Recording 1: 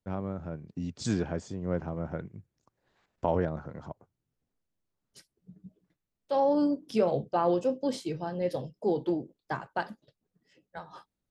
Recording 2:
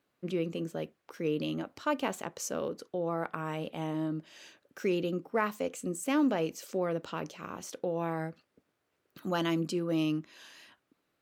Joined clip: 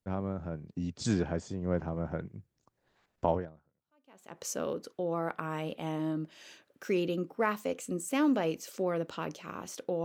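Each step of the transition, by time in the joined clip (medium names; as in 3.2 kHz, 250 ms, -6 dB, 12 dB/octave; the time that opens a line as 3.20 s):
recording 1
3.86 s: go over to recording 2 from 1.81 s, crossfade 1.10 s exponential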